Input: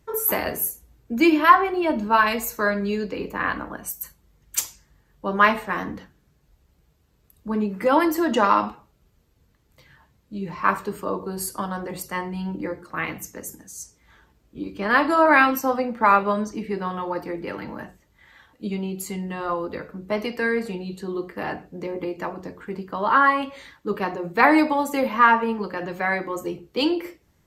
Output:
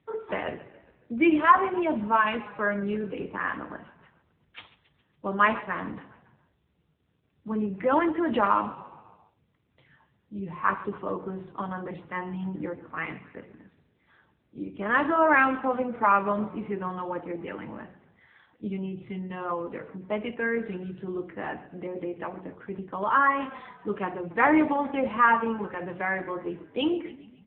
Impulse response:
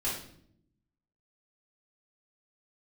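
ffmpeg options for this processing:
-filter_complex "[0:a]asettb=1/sr,asplit=3[link_01][link_02][link_03];[link_01]atrim=end=1.124[link_04];[link_02]atrim=start=1.12:end=1.69,asetpts=PTS-STARTPTS,afade=type=in:duration=0.004:curve=qsin,afade=type=out:start_time=0.566:duration=0.004:curve=qsin,aeval=exprs='val(0)+0.00631*(sin(2*PI*60*n/s)+sin(2*PI*2*60*n/s)/2+sin(2*PI*3*60*n/s)/3+sin(2*PI*4*60*n/s)/4+sin(2*PI*5*60*n/s)/5)':channel_layout=same[link_05];[link_03]atrim=start=1.686[link_06];[link_04][link_05]acrossfade=duration=0.004:curve1=hsin:curve2=qsin[link_07];[link_07][link_06]acrossfade=duration=0.004:curve1=qsin:curve2=hsin,asplit=6[link_08][link_09][link_10][link_11][link_12][link_13];[link_09]adelay=138,afreqshift=-32,volume=-18dB[link_14];[link_10]adelay=276,afreqshift=-64,volume=-23.2dB[link_15];[link_11]adelay=414,afreqshift=-96,volume=-28.4dB[link_16];[link_12]adelay=552,afreqshift=-128,volume=-33.6dB[link_17];[link_13]adelay=690,afreqshift=-160,volume=-38.8dB[link_18];[link_08][link_14][link_15][link_16][link_17][link_18]amix=inputs=6:normalize=0,volume=-4dB" -ar 8000 -c:a libopencore_amrnb -b:a 7950

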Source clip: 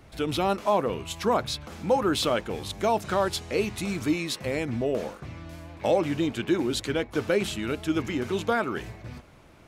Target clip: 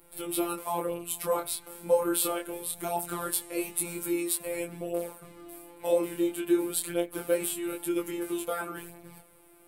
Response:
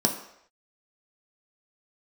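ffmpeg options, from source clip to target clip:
-filter_complex "[0:a]aexciter=amount=15.2:drive=3:freq=8400,asplit=2[link_01][link_02];[1:a]atrim=start_sample=2205,asetrate=66150,aresample=44100[link_03];[link_02][link_03]afir=irnorm=-1:irlink=0,volume=-18dB[link_04];[link_01][link_04]amix=inputs=2:normalize=0,afftfilt=real='hypot(re,im)*cos(PI*b)':imag='0':win_size=1024:overlap=0.75,flanger=delay=19.5:depth=7.6:speed=0.25,volume=-2dB"

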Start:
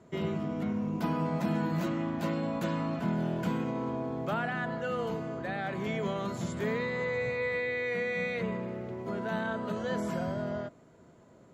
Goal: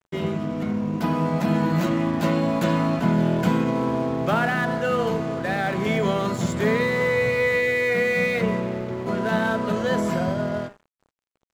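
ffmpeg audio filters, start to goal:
ffmpeg -i in.wav -af "bandreject=frequency=67.33:width_type=h:width=4,bandreject=frequency=134.66:width_type=h:width=4,bandreject=frequency=201.99:width_type=h:width=4,bandreject=frequency=269.32:width_type=h:width=4,bandreject=frequency=336.65:width_type=h:width=4,bandreject=frequency=403.98:width_type=h:width=4,bandreject=frequency=471.31:width_type=h:width=4,bandreject=frequency=538.64:width_type=h:width=4,bandreject=frequency=605.97:width_type=h:width=4,bandreject=frequency=673.3:width_type=h:width=4,bandreject=frequency=740.63:width_type=h:width=4,bandreject=frequency=807.96:width_type=h:width=4,bandreject=frequency=875.29:width_type=h:width=4,bandreject=frequency=942.62:width_type=h:width=4,bandreject=frequency=1009.95:width_type=h:width=4,bandreject=frequency=1077.28:width_type=h:width=4,bandreject=frequency=1144.61:width_type=h:width=4,bandreject=frequency=1211.94:width_type=h:width=4,bandreject=frequency=1279.27:width_type=h:width=4,bandreject=frequency=1346.6:width_type=h:width=4,bandreject=frequency=1413.93:width_type=h:width=4,bandreject=frequency=1481.26:width_type=h:width=4,aeval=exprs='sgn(val(0))*max(abs(val(0))-0.00316,0)':channel_layout=same,dynaudnorm=framelen=360:gausssize=9:maxgain=4dB,volume=7.5dB" out.wav

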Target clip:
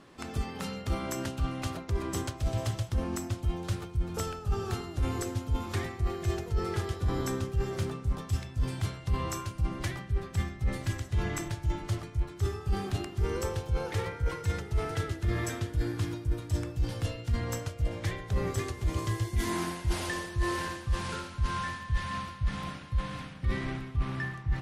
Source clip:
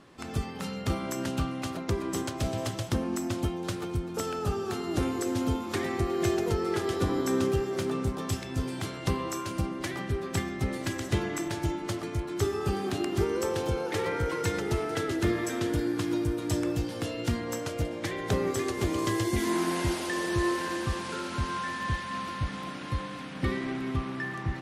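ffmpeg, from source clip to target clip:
ffmpeg -i in.wav -af "asubboost=boost=9.5:cutoff=88,areverse,acompressor=threshold=-26dB:ratio=6,areverse" out.wav

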